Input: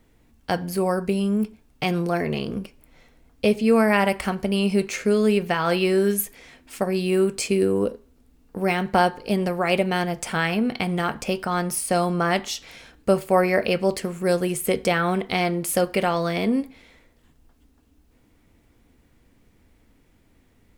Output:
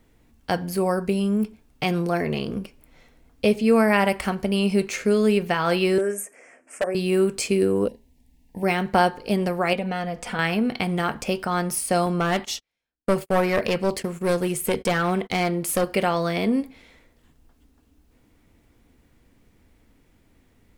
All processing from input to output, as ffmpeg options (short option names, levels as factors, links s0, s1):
-filter_complex "[0:a]asettb=1/sr,asplit=3[s0][s1][s2];[s0]atrim=end=5.984[s3];[s1]atrim=start=5.98:end=6.95,asetpts=PTS-STARTPTS,afade=t=in:d=0.004:c=qsin,afade=t=out:st=0.966:d=0.004:c=qsin,asuperstop=centerf=3900:order=4:qfactor=0.84,highpass=390,equalizer=f=600:t=q:w=4:g=7,equalizer=f=940:t=q:w=4:g=-6,equalizer=f=4300:t=q:w=4:g=5,equalizer=f=8500:t=q:w=4:g=5,lowpass=f=9100:w=0.5412,lowpass=f=9100:w=1.3066,aeval=exprs='0.168*(abs(mod(val(0)/0.168+3,4)-2)-1)':c=same[s4];[s2]atrim=start=6.946[s5];[s3][s4]acrossfade=d=0.004:c1=hsin:c2=qsin[s6];[s6][s5]acrossfade=d=0.004:c1=qsin:c2=hsin,asettb=1/sr,asplit=3[s7][s8][s9];[s7]atrim=end=7.884[s10];[s8]atrim=start=7.88:end=8.63,asetpts=PTS-STARTPTS,afade=t=in:d=0.004:c=qsin,afade=t=out:st=0.746:d=0.004:c=qsin,asuperstop=centerf=1300:order=12:qfactor=1.8,equalizer=f=430:w=1.4:g=-11[s11];[s9]atrim=start=8.626[s12];[s10][s11]acrossfade=d=0.004:c1=hsin:c2=qsin[s13];[s13][s12]acrossfade=d=0.004:c1=qsin:c2=hsin,asettb=1/sr,asplit=3[s14][s15][s16];[s14]atrim=end=9.734[s17];[s15]atrim=start=9.73:end=10.39,asetpts=PTS-STARTPTS,afade=t=in:d=0.004:c=qsin,afade=t=out:st=0.656:d=0.004:c=qsin,aecho=1:1:4.1:0.57,atrim=end_sample=29106,acompressor=threshold=0.0562:ratio=2.5:attack=3.2:release=140:knee=1:detection=peak,highshelf=f=6000:g=-11[s18];[s16]atrim=start=10.386[s19];[s17][s18]acrossfade=d=0.004:c1=hsin:c2=qsin[s20];[s20][s19]acrossfade=d=0.004:c1=qsin:c2=hsin,asettb=1/sr,asplit=3[s21][s22][s23];[s21]atrim=end=12.064[s24];[s22]atrim=start=12.06:end=15.84,asetpts=PTS-STARTPTS,afade=t=in:d=0.004:c=qsin,afade=t=out:st=3.776:d=0.004:c=qsin,agate=range=0.01:threshold=0.0141:ratio=16:release=100:detection=peak,aeval=exprs='clip(val(0),-1,0.1)':c=same[s25];[s23]atrim=start=15.836[s26];[s24][s25]acrossfade=d=0.004:c1=hsin:c2=qsin[s27];[s27][s26]acrossfade=d=0.004:c1=qsin:c2=hsin"